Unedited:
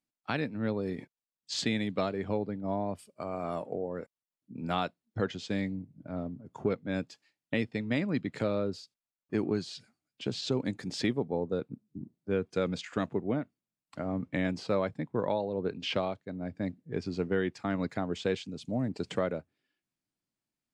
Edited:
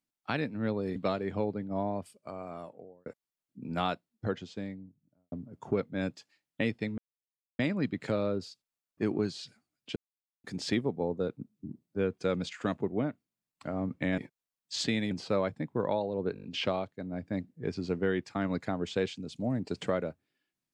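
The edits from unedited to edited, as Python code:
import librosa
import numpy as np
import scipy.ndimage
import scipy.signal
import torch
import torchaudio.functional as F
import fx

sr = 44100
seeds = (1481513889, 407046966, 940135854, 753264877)

y = fx.studio_fade_out(x, sr, start_s=4.86, length_s=1.39)
y = fx.edit(y, sr, fx.move(start_s=0.96, length_s=0.93, to_s=14.5),
    fx.fade_out_span(start_s=2.8, length_s=1.19),
    fx.insert_silence(at_s=7.91, length_s=0.61),
    fx.silence(start_s=10.28, length_s=0.48),
    fx.stutter(start_s=15.73, slice_s=0.02, count=6), tone=tone)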